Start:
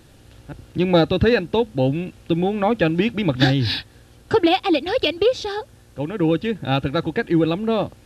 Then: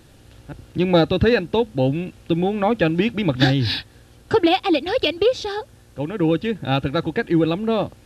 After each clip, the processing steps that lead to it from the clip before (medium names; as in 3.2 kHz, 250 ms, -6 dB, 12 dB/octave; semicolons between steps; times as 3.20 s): no audible change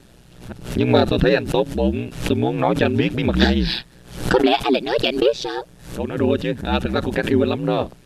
ring modulator 62 Hz; swell ahead of each attack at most 110 dB/s; trim +3 dB